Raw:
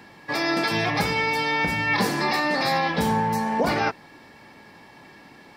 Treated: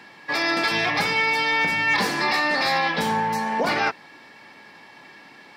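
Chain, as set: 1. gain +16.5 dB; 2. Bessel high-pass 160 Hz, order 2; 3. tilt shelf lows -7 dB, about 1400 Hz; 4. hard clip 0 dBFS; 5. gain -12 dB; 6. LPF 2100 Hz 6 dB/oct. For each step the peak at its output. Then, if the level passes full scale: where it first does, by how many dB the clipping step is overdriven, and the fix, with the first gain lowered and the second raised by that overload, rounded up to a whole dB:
+5.5, +5.5, +6.5, 0.0, -12.0, -12.0 dBFS; step 1, 6.5 dB; step 1 +9.5 dB, step 5 -5 dB

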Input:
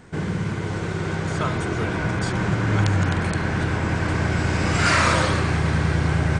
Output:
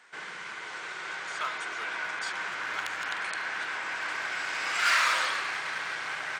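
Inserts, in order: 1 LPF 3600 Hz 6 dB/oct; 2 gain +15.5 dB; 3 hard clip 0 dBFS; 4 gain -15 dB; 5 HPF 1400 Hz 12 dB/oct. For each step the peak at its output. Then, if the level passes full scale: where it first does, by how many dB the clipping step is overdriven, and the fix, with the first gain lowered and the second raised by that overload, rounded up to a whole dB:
-7.5, +8.0, 0.0, -15.0, -11.5 dBFS; step 2, 8.0 dB; step 2 +7.5 dB, step 4 -7 dB

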